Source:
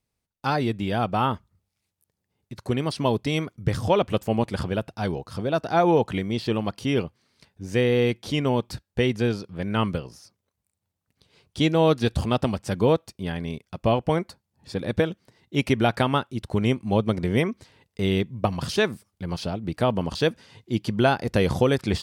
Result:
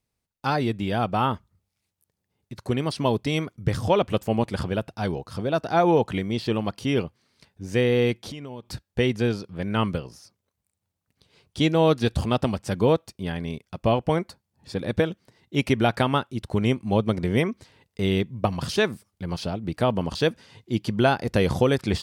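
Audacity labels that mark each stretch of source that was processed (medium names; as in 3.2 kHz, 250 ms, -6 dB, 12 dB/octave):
8.140000	8.670000	compression 16:1, threshold -32 dBFS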